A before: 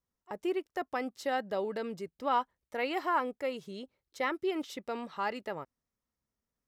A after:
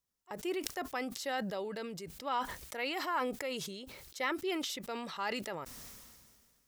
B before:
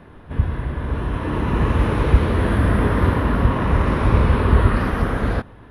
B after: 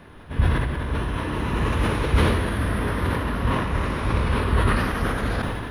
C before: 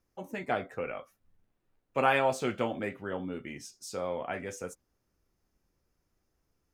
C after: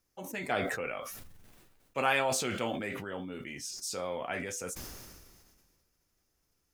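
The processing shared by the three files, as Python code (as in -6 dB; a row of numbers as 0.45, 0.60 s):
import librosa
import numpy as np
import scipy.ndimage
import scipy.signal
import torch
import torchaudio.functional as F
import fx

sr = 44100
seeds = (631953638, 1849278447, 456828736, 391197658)

y = fx.rider(x, sr, range_db=4, speed_s=2.0)
y = fx.high_shelf(y, sr, hz=2200.0, db=10.5)
y = fx.sustainer(y, sr, db_per_s=31.0)
y = y * librosa.db_to_amplitude(-7.0)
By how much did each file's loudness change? -2.5, -4.5, -1.5 LU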